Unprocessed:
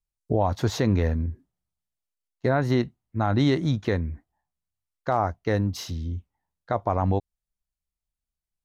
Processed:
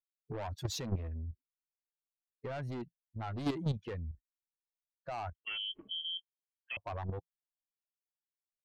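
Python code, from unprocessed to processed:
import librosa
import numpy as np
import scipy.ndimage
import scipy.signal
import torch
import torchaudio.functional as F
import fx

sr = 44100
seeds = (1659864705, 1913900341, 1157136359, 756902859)

y = fx.bin_expand(x, sr, power=2.0)
y = fx.peak_eq(y, sr, hz=170.0, db=3.5, octaves=0.25)
y = 10.0 ** (-28.5 / 20.0) * np.tanh(y / 10.0 ** (-28.5 / 20.0))
y = fx.level_steps(y, sr, step_db=10)
y = fx.freq_invert(y, sr, carrier_hz=3200, at=(5.35, 6.77))
y = y * librosa.db_to_amplitude(1.0)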